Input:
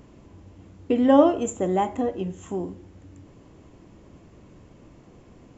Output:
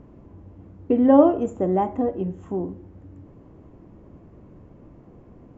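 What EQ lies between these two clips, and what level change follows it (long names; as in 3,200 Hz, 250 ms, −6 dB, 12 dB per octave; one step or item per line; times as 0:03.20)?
high-frequency loss of the air 180 metres
parametric band 3,500 Hz −12.5 dB 2 octaves
+3.0 dB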